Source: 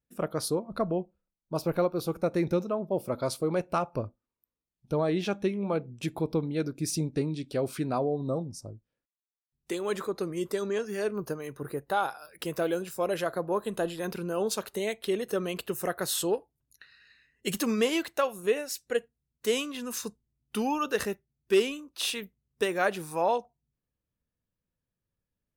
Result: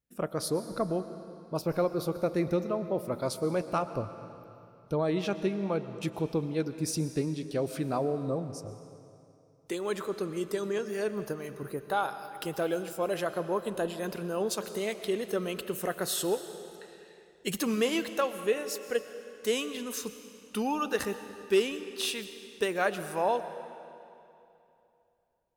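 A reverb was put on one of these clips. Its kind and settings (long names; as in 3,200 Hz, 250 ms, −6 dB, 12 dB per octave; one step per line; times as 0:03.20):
comb and all-pass reverb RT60 2.8 s, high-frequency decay 0.9×, pre-delay 80 ms, DRR 11 dB
level −1.5 dB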